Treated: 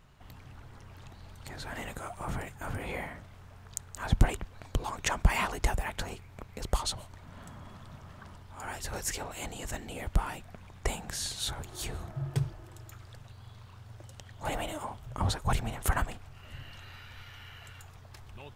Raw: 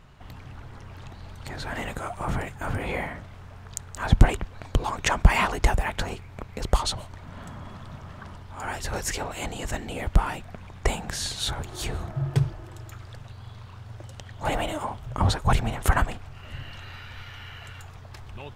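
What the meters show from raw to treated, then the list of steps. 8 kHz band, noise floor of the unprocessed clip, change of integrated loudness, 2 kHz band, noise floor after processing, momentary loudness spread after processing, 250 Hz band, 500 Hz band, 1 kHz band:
−3.0 dB, −44 dBFS, −7.0 dB, −7.0 dB, −52 dBFS, 20 LU, −7.5 dB, −7.5 dB, −7.5 dB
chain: high-shelf EQ 7,100 Hz +8.5 dB
level −7.5 dB

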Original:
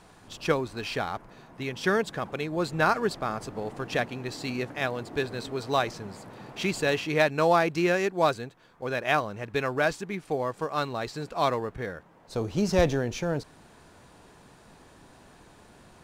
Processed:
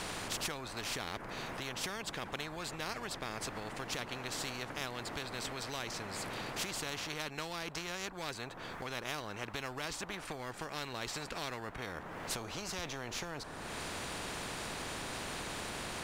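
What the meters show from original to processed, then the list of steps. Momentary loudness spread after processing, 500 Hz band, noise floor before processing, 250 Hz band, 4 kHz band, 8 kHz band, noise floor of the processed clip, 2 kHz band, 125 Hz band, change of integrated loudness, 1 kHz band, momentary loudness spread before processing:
4 LU, −16.0 dB, −55 dBFS, −13.5 dB, −2.5 dB, +2.0 dB, −47 dBFS, −9.5 dB, −12.0 dB, −11.5 dB, −12.0 dB, 13 LU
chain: tilt shelving filter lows +7.5 dB, about 1,300 Hz
downward compressor 3 to 1, threshold −46 dBFS, peak gain reduction 24.5 dB
every bin compressed towards the loudest bin 4 to 1
level +8 dB

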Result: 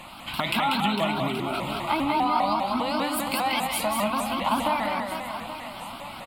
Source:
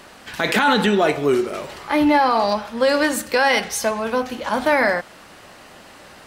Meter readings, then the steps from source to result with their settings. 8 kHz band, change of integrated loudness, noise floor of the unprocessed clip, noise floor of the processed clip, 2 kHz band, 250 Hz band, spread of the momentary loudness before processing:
−6.0 dB, −7.0 dB, −45 dBFS, −40 dBFS, −10.0 dB, −6.5 dB, 8 LU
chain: parametric band 72 Hz −7 dB 0.33 octaves
downward compressor, threshold −24 dBFS, peak gain reduction 12 dB
phaser with its sweep stopped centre 1,700 Hz, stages 6
on a send: reverse bouncing-ball delay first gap 190 ms, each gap 1.4×, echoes 5
on the sum: pitch modulation by a square or saw wave saw up 5 Hz, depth 160 cents
level +4.5 dB

